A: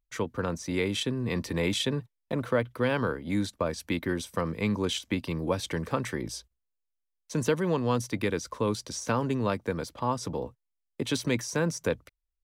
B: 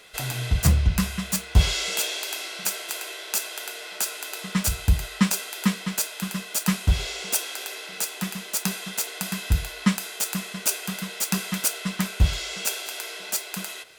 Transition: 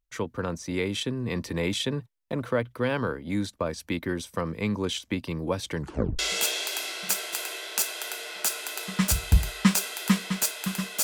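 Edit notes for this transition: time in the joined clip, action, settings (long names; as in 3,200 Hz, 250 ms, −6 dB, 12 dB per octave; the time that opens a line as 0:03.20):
A
0:05.78: tape stop 0.41 s
0:06.19: continue with B from 0:01.75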